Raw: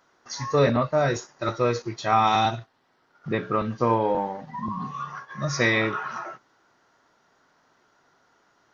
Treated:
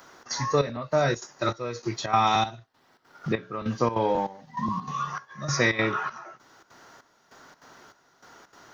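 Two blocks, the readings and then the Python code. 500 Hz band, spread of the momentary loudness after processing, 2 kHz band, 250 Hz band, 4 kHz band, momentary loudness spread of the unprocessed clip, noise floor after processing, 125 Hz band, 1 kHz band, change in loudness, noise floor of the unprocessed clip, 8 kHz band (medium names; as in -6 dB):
-3.0 dB, 11 LU, -1.5 dB, -2.5 dB, 0.0 dB, 14 LU, -64 dBFS, -2.5 dB, -2.0 dB, -2.0 dB, -66 dBFS, no reading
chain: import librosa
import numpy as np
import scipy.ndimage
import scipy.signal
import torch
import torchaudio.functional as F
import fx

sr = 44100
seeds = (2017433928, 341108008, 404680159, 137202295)

y = fx.high_shelf(x, sr, hz=5800.0, db=10.5)
y = fx.step_gate(y, sr, bpm=197, pattern='xxx.xxxx....', floor_db=-12.0, edge_ms=4.5)
y = fx.band_squash(y, sr, depth_pct=40)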